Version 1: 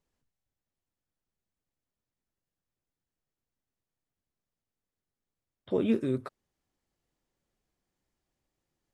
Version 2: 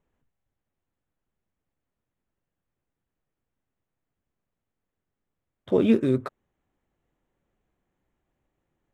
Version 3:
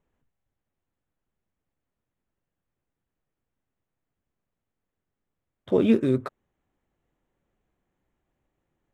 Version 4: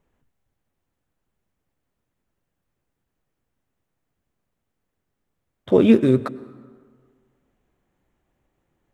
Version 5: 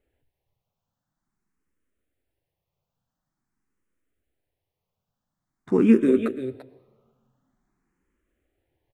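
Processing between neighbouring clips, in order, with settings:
adaptive Wiener filter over 9 samples; level +7 dB
no processing that can be heard
dense smooth reverb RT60 1.7 s, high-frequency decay 0.65×, pre-delay 85 ms, DRR 19 dB; level +6 dB
single-tap delay 341 ms −10.5 dB; frequency shifter mixed with the dry sound +0.47 Hz; level −1.5 dB

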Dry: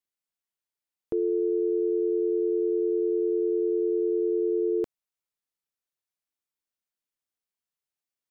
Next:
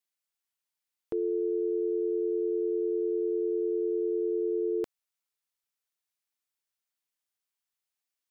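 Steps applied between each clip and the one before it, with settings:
tilt shelving filter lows −4.5 dB, about 680 Hz
level −1.5 dB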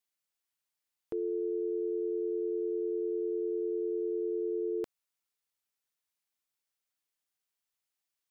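brickwall limiter −27 dBFS, peak gain reduction 4 dB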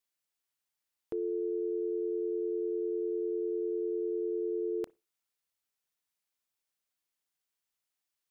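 convolution reverb, pre-delay 30 ms, DRR 21.5 dB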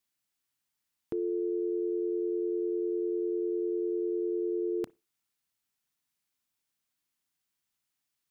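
octave-band graphic EQ 125/250/500 Hz +5/+5/−5 dB
level +3 dB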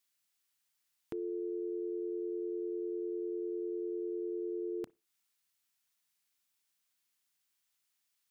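one half of a high-frequency compander encoder only
level −6.5 dB

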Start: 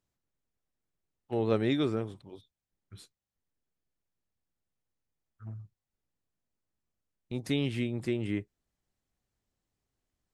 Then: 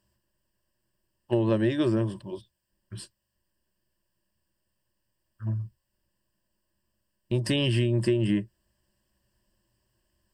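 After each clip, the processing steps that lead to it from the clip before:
EQ curve with evenly spaced ripples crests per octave 1.3, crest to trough 14 dB
downward compressor 6 to 1, threshold −29 dBFS, peak gain reduction 9.5 dB
level +8.5 dB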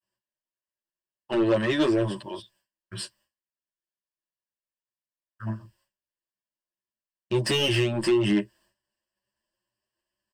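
mid-hump overdrive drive 21 dB, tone 4,900 Hz, clips at −11 dBFS
downward expander −53 dBFS
barber-pole flanger 9.1 ms +2.1 Hz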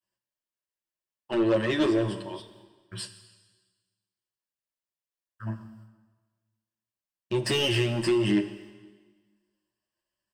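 dense smooth reverb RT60 1.4 s, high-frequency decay 1×, DRR 9.5 dB
level −2 dB

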